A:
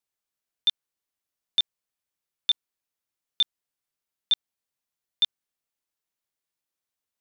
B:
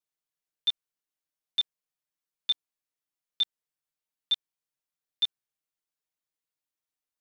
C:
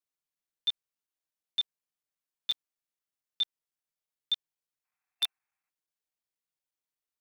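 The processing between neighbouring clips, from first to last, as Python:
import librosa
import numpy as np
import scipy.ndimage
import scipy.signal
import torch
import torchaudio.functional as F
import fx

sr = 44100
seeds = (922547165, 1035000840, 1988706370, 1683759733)

y1 = x + 0.94 * np.pad(x, (int(6.5 * sr / 1000.0), 0))[:len(x)]
y1 = F.gain(torch.from_numpy(y1), -8.0).numpy()
y2 = fx.spec_box(y1, sr, start_s=4.85, length_s=0.84, low_hz=690.0, high_hz=2700.0, gain_db=12)
y2 = (np.mod(10.0 ** (17.0 / 20.0) * y2 + 1.0, 2.0) - 1.0) / 10.0 ** (17.0 / 20.0)
y2 = fx.buffer_crackle(y2, sr, first_s=0.35, period_s=0.12, block=256, kind='zero')
y2 = F.gain(torch.from_numpy(y2), -3.0).numpy()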